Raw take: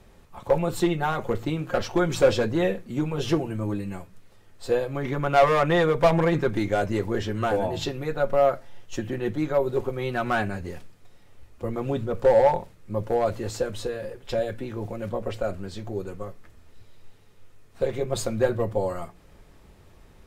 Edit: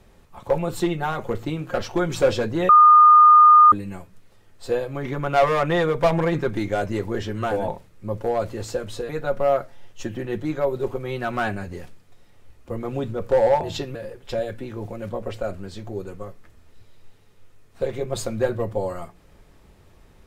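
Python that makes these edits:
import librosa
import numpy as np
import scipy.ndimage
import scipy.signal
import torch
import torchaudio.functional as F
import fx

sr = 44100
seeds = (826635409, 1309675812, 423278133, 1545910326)

y = fx.edit(x, sr, fx.bleep(start_s=2.69, length_s=1.03, hz=1220.0, db=-7.5),
    fx.swap(start_s=7.68, length_s=0.34, other_s=12.54, other_length_s=1.41), tone=tone)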